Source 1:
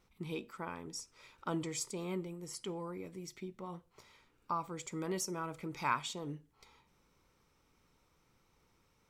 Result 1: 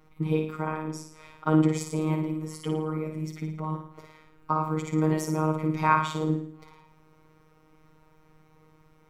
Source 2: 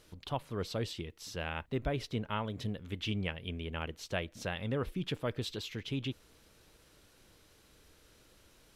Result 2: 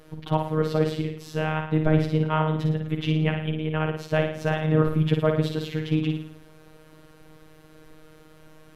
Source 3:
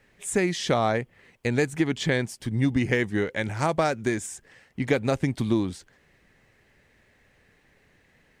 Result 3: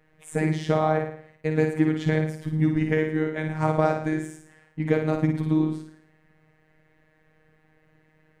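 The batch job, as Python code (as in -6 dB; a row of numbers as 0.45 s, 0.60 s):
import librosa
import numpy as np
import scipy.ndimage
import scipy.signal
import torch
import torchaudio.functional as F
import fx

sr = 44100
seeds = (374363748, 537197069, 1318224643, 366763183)

y = fx.peak_eq(x, sr, hz=5400.0, db=-7.5, octaves=2.2)
y = fx.room_flutter(y, sr, wall_m=9.5, rt60_s=0.58)
y = fx.robotise(y, sr, hz=156.0)
y = fx.high_shelf(y, sr, hz=2600.0, db=-8.5)
y = y * 10.0 ** (-6 / 20.0) / np.max(np.abs(y))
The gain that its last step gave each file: +15.5 dB, +15.0 dB, +3.0 dB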